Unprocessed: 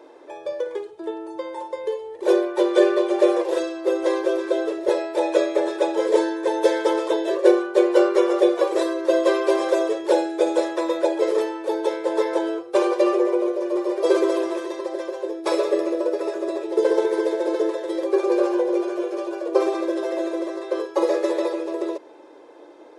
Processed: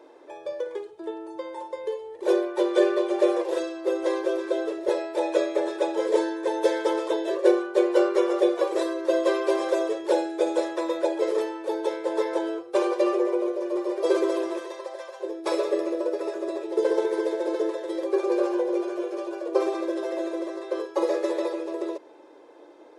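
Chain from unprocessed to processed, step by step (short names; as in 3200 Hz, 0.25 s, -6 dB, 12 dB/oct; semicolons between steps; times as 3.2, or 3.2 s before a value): 14.59–15.19 HPF 370 Hz -> 680 Hz 24 dB/oct; gain -4 dB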